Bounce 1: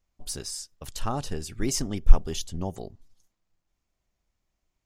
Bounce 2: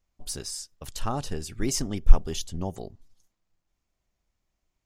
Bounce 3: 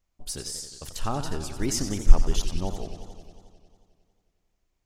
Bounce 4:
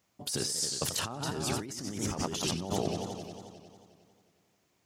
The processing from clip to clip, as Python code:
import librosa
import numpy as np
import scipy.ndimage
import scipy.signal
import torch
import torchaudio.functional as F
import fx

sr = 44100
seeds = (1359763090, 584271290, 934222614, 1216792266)

y1 = x
y2 = fx.echo_warbled(y1, sr, ms=90, feedback_pct=76, rate_hz=2.8, cents=198, wet_db=-10.0)
y3 = scipy.signal.sosfilt(scipy.signal.butter(4, 110.0, 'highpass', fs=sr, output='sos'), y2)
y3 = fx.over_compress(y3, sr, threshold_db=-39.0, ratio=-1.0)
y3 = y3 * 10.0 ** (4.5 / 20.0)